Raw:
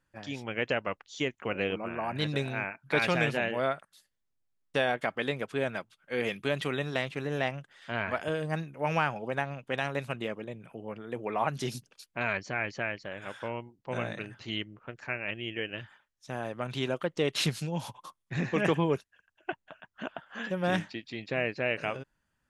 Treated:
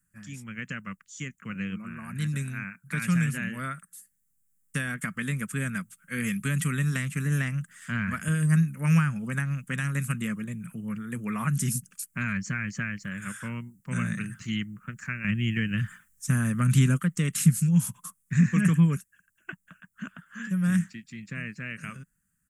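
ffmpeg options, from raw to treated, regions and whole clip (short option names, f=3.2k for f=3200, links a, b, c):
-filter_complex "[0:a]asettb=1/sr,asplit=3[a][b][c];[a]atrim=end=15.244[d];[b]atrim=start=15.24:end=16.99,asetpts=PTS-STARTPTS,afade=t=in:d=0.004:c=qsin,afade=t=out:st=1.746:d=0.004:c=qsin,lowshelf=f=160:g=7,acontrast=44[e];[c]atrim=start=16.986[f];[d][e]acrossfade=d=0.004:c1=hsin:c2=qsin[g];[g][f]acrossfade=d=0.004:c1=qsin:c2=hsin,dynaudnorm=f=650:g=13:m=9.5dB,firequalizer=gain_entry='entry(120,0);entry(180,9);entry(330,-15);entry(770,-26);entry(1200,-4);entry(1700,-2);entry(3800,-14);entry(7700,14)':delay=0.05:min_phase=1,acrossover=split=280[h][i];[i]acompressor=threshold=-30dB:ratio=3[j];[h][j]amix=inputs=2:normalize=0"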